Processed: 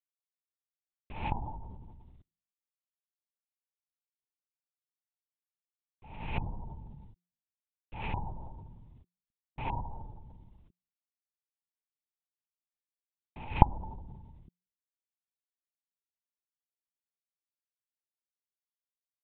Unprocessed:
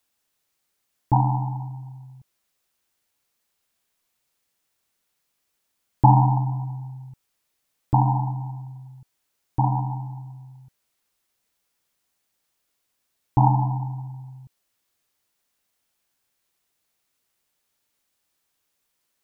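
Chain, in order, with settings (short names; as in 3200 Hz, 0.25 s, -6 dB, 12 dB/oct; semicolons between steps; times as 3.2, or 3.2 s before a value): rattling part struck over -19 dBFS, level -13 dBFS; bell 950 Hz +2.5 dB 0.72 oct; negative-ratio compressor -20 dBFS, ratio -0.5; bit-crush 10-bit; de-hum 176.9 Hz, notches 2; LPC vocoder at 8 kHz whisper; gain -14.5 dB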